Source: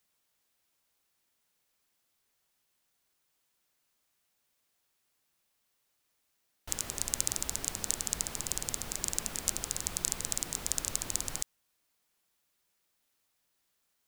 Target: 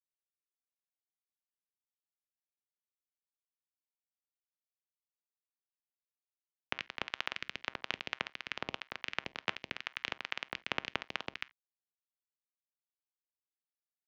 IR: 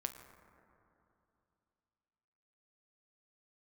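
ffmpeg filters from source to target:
-filter_complex "[0:a]acrusher=bits=3:mix=0:aa=0.5,asplit=2[a][b];[1:a]atrim=start_sample=2205,atrim=end_sample=3969[c];[b][c]afir=irnorm=-1:irlink=0,volume=-2dB[d];[a][d]amix=inputs=2:normalize=0,highpass=f=370:t=q:w=0.5412,highpass=f=370:t=q:w=1.307,lowpass=f=3.1k:t=q:w=0.5176,lowpass=f=3.1k:t=q:w=0.7071,lowpass=f=3.1k:t=q:w=1.932,afreqshift=-250,volume=10dB"

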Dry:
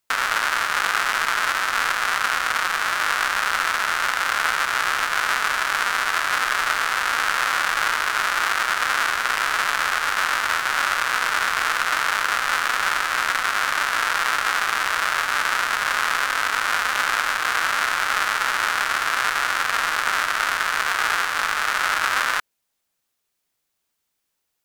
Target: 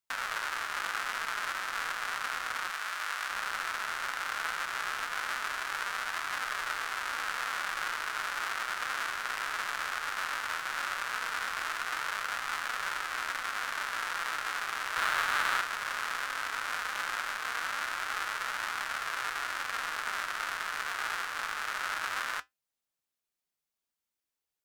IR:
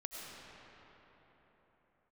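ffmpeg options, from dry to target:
-filter_complex "[0:a]asettb=1/sr,asplit=3[a][b][c];[a]atrim=end=2.704[d];[b]atrim=start=2.7:end=3.3,asetpts=PTS-STARTPTS,afade=t=in:d=0.004:c=qsin,afade=t=out:st=0.596:d=0.004:c=qsin,lowshelf=f=450:g=-10[e];[c]atrim=start=3.296[f];[d][e]acrossfade=d=0.004:c1=hsin:c2=qsin[g];[g][f]acrossfade=d=0.004:c1=qsin:c2=hsin,asettb=1/sr,asplit=3[h][i][j];[h]atrim=end=14.964[k];[i]atrim=start=14.96:end=15.61,asetpts=PTS-STARTPTS,afade=t=in:d=0.004:c=qsin,afade=t=out:st=0.646:d=0.004:c=qsin,acontrast=79[l];[j]atrim=start=15.606[m];[k][l]acrossfade=d=0.004:c1=hsin:c2=qsin[n];[n][m]acrossfade=d=0.004:c1=qsin:c2=hsin,flanger=delay=0.8:depth=9.2:regen=-68:speed=0.16:shape=triangular,volume=-8.5dB"

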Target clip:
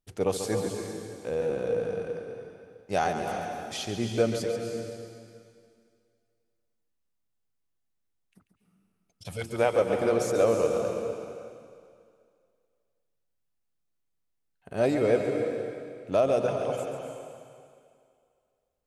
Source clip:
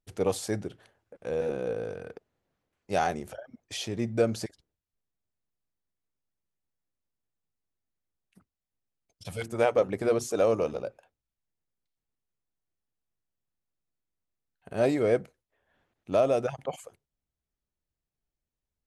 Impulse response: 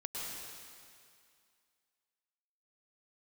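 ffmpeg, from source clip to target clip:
-filter_complex "[0:a]asplit=2[a][b];[1:a]atrim=start_sample=2205,adelay=139[c];[b][c]afir=irnorm=-1:irlink=0,volume=-4.5dB[d];[a][d]amix=inputs=2:normalize=0"

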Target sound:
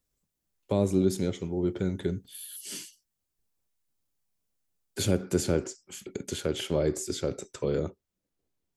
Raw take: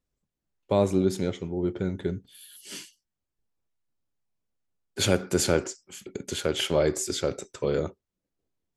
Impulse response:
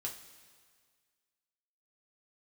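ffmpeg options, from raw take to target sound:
-filter_complex "[0:a]asetnsamples=n=441:p=0,asendcmd='5.11 highshelf g 3.5',highshelf=f=5k:g=11,acrossover=split=460[a][b];[b]acompressor=threshold=-40dB:ratio=2[c];[a][c]amix=inputs=2:normalize=0"

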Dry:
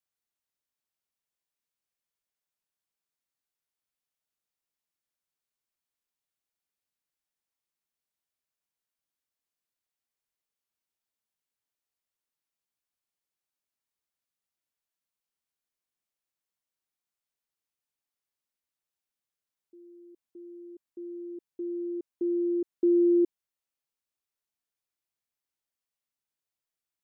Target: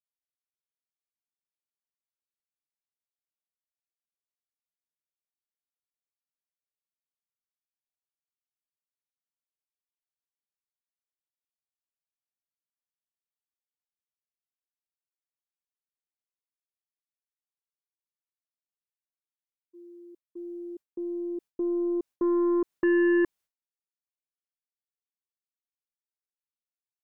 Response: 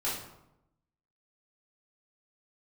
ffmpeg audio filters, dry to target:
-af "agate=range=-33dB:threshold=-48dB:ratio=3:detection=peak,aeval=exprs='0.126*(cos(1*acos(clip(val(0)/0.126,-1,1)))-cos(1*PI/2))+0.0316*(cos(5*acos(clip(val(0)/0.126,-1,1)))-cos(5*PI/2))+0.00316*(cos(8*acos(clip(val(0)/0.126,-1,1)))-cos(8*PI/2))':c=same"

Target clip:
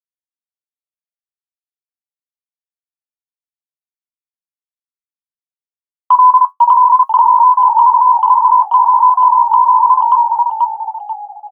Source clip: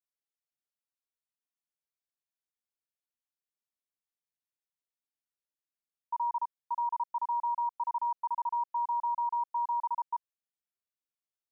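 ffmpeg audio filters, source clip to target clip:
-filter_complex "[0:a]afftdn=nr=14:nf=-54,aemphasis=mode=production:type=cd,agate=range=-49dB:threshold=-39dB:ratio=16:detection=peak,adynamicequalizer=threshold=0.00631:dfrequency=920:dqfactor=0.82:tfrequency=920:tqfactor=0.82:attack=5:release=100:ratio=0.375:range=3:mode=cutabove:tftype=bell,asplit=6[a][b][c][d][e][f];[b]adelay=486,afreqshift=-55,volume=-4dB[g];[c]adelay=972,afreqshift=-110,volume=-12.4dB[h];[d]adelay=1458,afreqshift=-165,volume=-20.8dB[i];[e]adelay=1944,afreqshift=-220,volume=-29.2dB[j];[f]adelay=2430,afreqshift=-275,volume=-37.6dB[k];[a][g][h][i][j][k]amix=inputs=6:normalize=0,flanger=delay=8.6:depth=4.6:regen=55:speed=0.56:shape=triangular,asetrate=46722,aresample=44100,atempo=0.943874,acontrast=80,alimiter=level_in=26.5dB:limit=-1dB:release=50:level=0:latency=1,volume=-1dB"

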